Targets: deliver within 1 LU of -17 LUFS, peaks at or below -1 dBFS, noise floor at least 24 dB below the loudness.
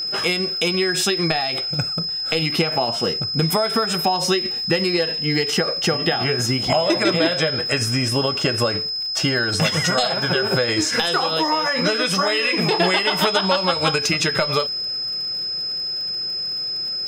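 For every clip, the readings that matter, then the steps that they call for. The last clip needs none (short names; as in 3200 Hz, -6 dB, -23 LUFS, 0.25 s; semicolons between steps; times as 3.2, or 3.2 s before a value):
ticks 57/s; steady tone 5100 Hz; tone level -23 dBFS; loudness -19.5 LUFS; peak -2.5 dBFS; loudness target -17.0 LUFS
-> de-click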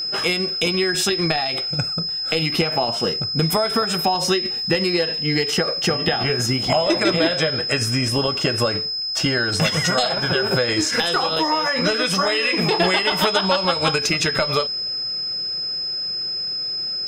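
ticks 0.53/s; steady tone 5100 Hz; tone level -23 dBFS
-> notch 5100 Hz, Q 30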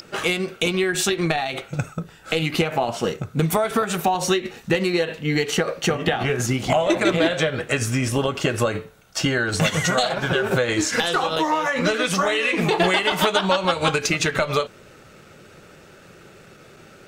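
steady tone none; loudness -21.5 LUFS; peak -3.5 dBFS; loudness target -17.0 LUFS
-> gain +4.5 dB; limiter -1 dBFS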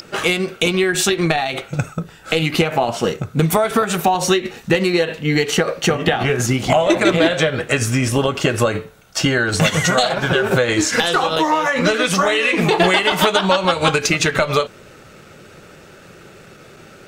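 loudness -17.0 LUFS; peak -1.0 dBFS; noise floor -43 dBFS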